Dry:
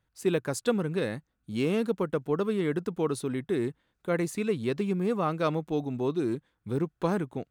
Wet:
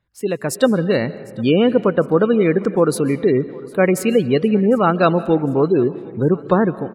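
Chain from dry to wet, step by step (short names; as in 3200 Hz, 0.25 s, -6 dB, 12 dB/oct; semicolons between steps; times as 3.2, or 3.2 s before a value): varispeed +8%; spectral gate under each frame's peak -30 dB strong; AGC gain up to 9.5 dB; feedback echo 0.754 s, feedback 46%, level -23 dB; on a send at -16.5 dB: reverb RT60 1.6 s, pre-delay 0.11 s; on the sum: gain +3.5 dB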